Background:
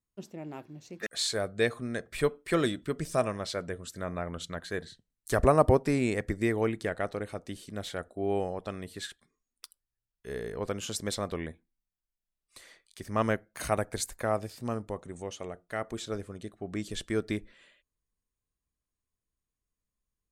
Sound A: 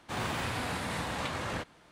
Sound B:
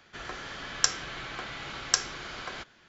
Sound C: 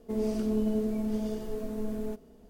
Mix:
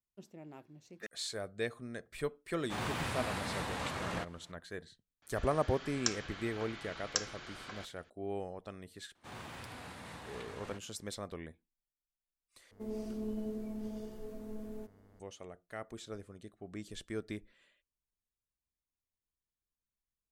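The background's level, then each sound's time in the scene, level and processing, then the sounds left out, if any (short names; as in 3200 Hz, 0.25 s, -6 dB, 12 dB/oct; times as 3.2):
background -9.5 dB
2.61 add A -3.5 dB
5.22 add B -9 dB
9.15 add A -13.5 dB
12.71 replace with C -10.5 dB + buzz 100 Hz, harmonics 22, -54 dBFS -6 dB/oct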